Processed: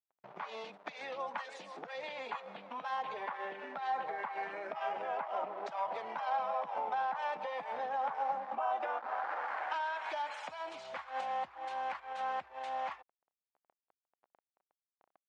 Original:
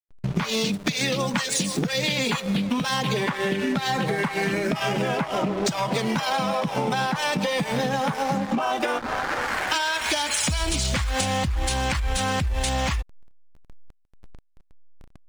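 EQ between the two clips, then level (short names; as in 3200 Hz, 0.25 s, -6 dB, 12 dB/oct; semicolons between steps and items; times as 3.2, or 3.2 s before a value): ladder band-pass 930 Hz, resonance 40%; 0.0 dB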